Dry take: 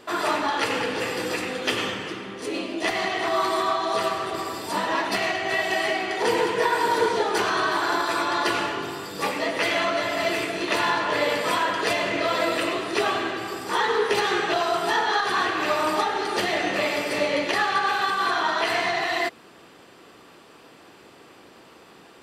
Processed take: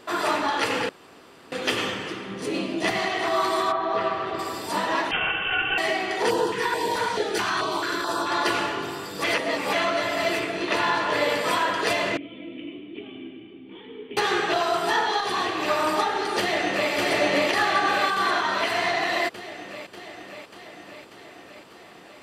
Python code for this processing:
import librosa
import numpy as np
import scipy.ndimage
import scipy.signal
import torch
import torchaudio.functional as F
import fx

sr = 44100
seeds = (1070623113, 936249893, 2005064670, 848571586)

y = fx.peak_eq(x, sr, hz=160.0, db=13.0, octaves=0.77, at=(2.3, 2.99))
y = fx.lowpass(y, sr, hz=fx.line((3.71, 1900.0), (4.38, 3500.0)), slope=12, at=(3.71, 4.38), fade=0.02)
y = fx.freq_invert(y, sr, carrier_hz=3400, at=(5.11, 5.78))
y = fx.filter_held_notch(y, sr, hz=4.6, low_hz=380.0, high_hz=2200.0, at=(6.29, 8.29), fade=0.02)
y = fx.high_shelf(y, sr, hz=fx.line((10.38, 5700.0), (10.93, 8300.0)), db=-9.0, at=(10.38, 10.93), fade=0.02)
y = fx.formant_cascade(y, sr, vowel='i', at=(12.17, 14.17))
y = fx.peak_eq(y, sr, hz=1500.0, db=-9.0, octaves=0.52, at=(15.07, 15.68))
y = fx.echo_throw(y, sr, start_s=16.39, length_s=0.52, ms=590, feedback_pct=70, wet_db=-1.0)
y = fx.notch_comb(y, sr, f0_hz=160.0, at=(18.41, 18.81))
y = fx.edit(y, sr, fx.room_tone_fill(start_s=0.89, length_s=0.63),
    fx.reverse_span(start_s=9.24, length_s=0.49), tone=tone)